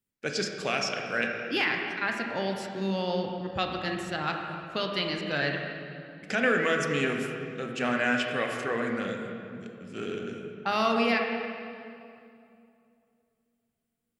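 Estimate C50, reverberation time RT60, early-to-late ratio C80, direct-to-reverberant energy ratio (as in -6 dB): 3.0 dB, 2.6 s, 4.0 dB, 2.0 dB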